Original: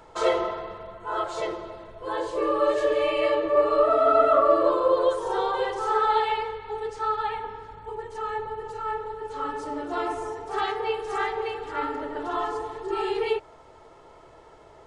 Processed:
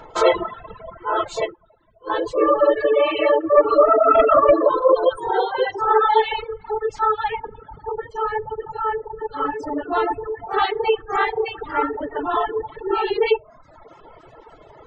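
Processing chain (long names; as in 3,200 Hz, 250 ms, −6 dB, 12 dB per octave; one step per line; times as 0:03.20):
rectangular room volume 330 cubic metres, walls furnished, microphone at 0.46 metres
hard clipping −12.5 dBFS, distortion −25 dB
0:05.31–0:05.82: notch comb filter 1,200 Hz
gate on every frequency bin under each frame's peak −30 dB strong
reverb reduction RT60 0.85 s
0:02.85–0:03.57: high-pass filter 100 Hz
reverb reduction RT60 0.8 s
0:01.41–0:02.10: expander for the loud parts 2.5 to 1, over −38 dBFS
level +8.5 dB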